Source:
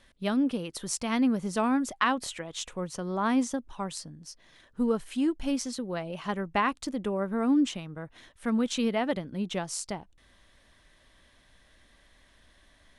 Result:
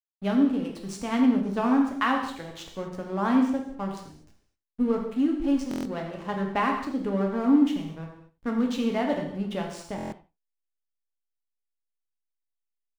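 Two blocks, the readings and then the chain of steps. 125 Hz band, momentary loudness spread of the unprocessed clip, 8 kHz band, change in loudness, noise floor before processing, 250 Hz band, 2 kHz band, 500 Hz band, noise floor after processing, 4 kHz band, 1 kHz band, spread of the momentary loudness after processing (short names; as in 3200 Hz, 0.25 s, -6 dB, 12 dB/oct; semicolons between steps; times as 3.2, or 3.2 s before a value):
+3.0 dB, 12 LU, under -10 dB, +3.0 dB, -62 dBFS, +4.0 dB, +0.5 dB, +2.0 dB, -83 dBFS, -3.0 dB, +2.0 dB, 14 LU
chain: LPF 2700 Hz 6 dB/oct; backlash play -38 dBFS; on a send: echo 82 ms -16.5 dB; on the sum: non-linear reverb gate 0.27 s falling, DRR 1 dB; stuck buffer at 5.69/9.96, samples 1024, times 6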